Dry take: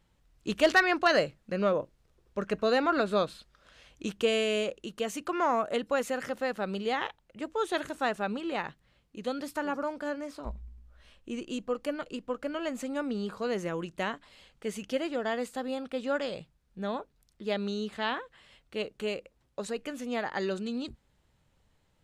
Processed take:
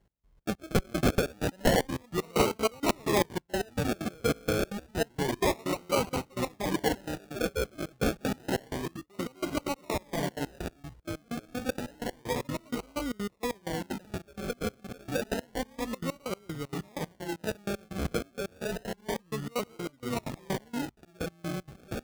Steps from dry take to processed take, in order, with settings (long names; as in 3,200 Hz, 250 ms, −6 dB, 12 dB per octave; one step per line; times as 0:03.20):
delay with pitch and tempo change per echo 369 ms, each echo −3 semitones, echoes 3
gate pattern "x..xx.x.." 191 BPM −24 dB
0:05.39–0:07.83: all-pass dispersion highs, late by 44 ms, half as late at 1,400 Hz
sample-and-hold swept by an LFO 36×, swing 60% 0.29 Hz
high-pass filter 45 Hz 6 dB per octave
low-shelf EQ 94 Hz +6 dB
wrap-around overflow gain 14.5 dB